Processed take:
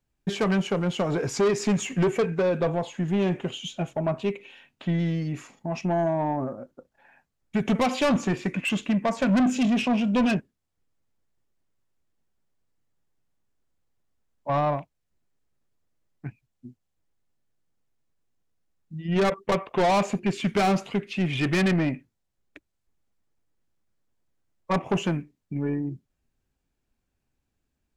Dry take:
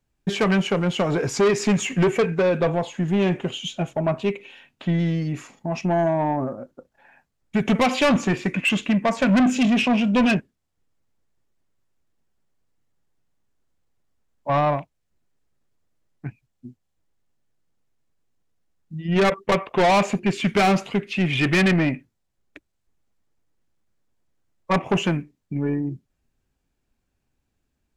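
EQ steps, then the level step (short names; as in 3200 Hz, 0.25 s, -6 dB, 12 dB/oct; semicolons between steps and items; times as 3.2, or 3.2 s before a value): dynamic EQ 2300 Hz, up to -4 dB, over -33 dBFS, Q 1.1; -3.5 dB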